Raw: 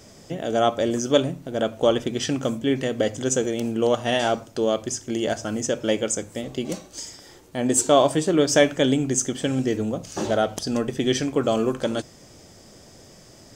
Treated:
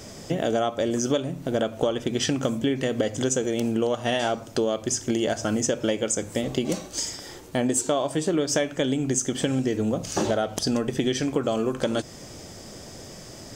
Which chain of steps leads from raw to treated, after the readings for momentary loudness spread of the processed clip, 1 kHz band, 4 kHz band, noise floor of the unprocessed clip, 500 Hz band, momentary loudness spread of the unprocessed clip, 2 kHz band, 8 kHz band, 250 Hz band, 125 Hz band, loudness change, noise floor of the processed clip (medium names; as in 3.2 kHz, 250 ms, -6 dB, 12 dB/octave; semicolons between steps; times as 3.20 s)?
7 LU, -4.0 dB, -2.0 dB, -49 dBFS, -3.0 dB, 12 LU, -2.5 dB, -1.0 dB, -1.0 dB, -0.5 dB, -2.5 dB, -43 dBFS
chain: compression 10:1, threshold -27 dBFS, peak gain reduction 16 dB; trim +6.5 dB